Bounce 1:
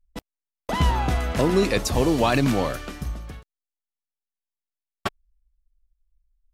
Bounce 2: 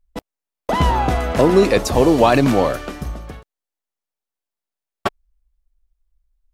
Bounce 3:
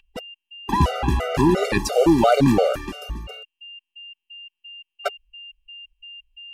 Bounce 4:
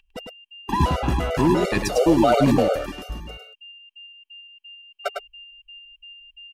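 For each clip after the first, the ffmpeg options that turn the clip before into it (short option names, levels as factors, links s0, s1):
-af "equalizer=f=580:w=0.51:g=7,volume=1.26"
-af "aeval=exprs='val(0)+0.0141*sin(2*PI*2800*n/s)':c=same,afftfilt=real='re*gt(sin(2*PI*2.9*pts/sr)*(1-2*mod(floor(b*sr/1024/390),2)),0)':imag='im*gt(sin(2*PI*2.9*pts/sr)*(1-2*mod(floor(b*sr/1024/390),2)),0)':win_size=1024:overlap=0.75"
-af "aecho=1:1:103:0.562,volume=0.794"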